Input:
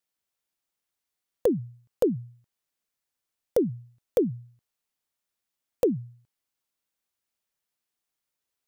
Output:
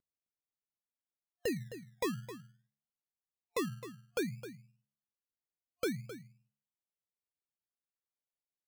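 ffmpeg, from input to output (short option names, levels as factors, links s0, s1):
-filter_complex "[0:a]agate=range=0.178:threshold=0.002:ratio=16:detection=peak,aeval=exprs='val(0)+0.00282*sin(2*PI*1100*n/s)':c=same,equalizer=f=860:w=1.2:g=-13,bandreject=f=70.01:t=h:w=4,bandreject=f=140.02:t=h:w=4,bandreject=f=210.03:t=h:w=4,acrossover=split=660|7300[s0][s1][s2];[s1]acrusher=bits=6:mix=0:aa=0.000001[s3];[s0][s3][s2]amix=inputs=3:normalize=0,afftfilt=real='re*(1-between(b*sr/4096,700,3600))':imag='im*(1-between(b*sr/4096,700,3600))':win_size=4096:overlap=0.75,acrusher=samples=23:mix=1:aa=0.000001:lfo=1:lforange=13.8:lforate=0.59,asplit=2[s4][s5];[s5]aecho=0:1:262:0.224[s6];[s4][s6]amix=inputs=2:normalize=0,volume=0.398"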